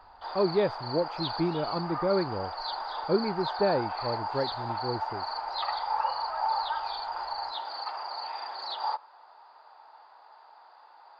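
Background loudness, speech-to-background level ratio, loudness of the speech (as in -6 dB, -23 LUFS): -33.5 LUFS, 2.5 dB, -31.0 LUFS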